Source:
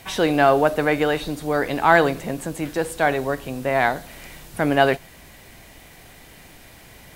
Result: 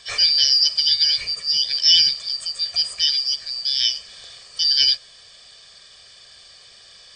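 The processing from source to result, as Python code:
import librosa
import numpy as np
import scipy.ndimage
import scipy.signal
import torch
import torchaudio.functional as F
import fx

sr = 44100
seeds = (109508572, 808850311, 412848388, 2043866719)

y = fx.band_shuffle(x, sr, order='4321')
y = fx.brickwall_lowpass(y, sr, high_hz=9000.0)
y = y + 0.75 * np.pad(y, (int(1.7 * sr / 1000.0), 0))[:len(y)]
y = y * 10.0 ** (-1.0 / 20.0)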